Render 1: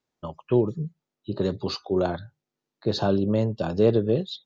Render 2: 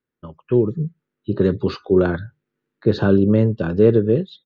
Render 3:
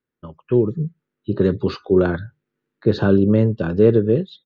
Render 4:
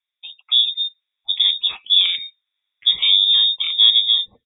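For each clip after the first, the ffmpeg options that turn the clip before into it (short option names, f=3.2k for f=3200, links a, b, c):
-af "firequalizer=gain_entry='entry(460,0);entry(680,-12);entry(1500,2);entry(2200,-3);entry(5100,-17)':delay=0.05:min_phase=1,dynaudnorm=f=380:g=3:m=10dB"
-af anull
-af "lowpass=f=3.2k:t=q:w=0.5098,lowpass=f=3.2k:t=q:w=0.6013,lowpass=f=3.2k:t=q:w=0.9,lowpass=f=3.2k:t=q:w=2.563,afreqshift=-3800"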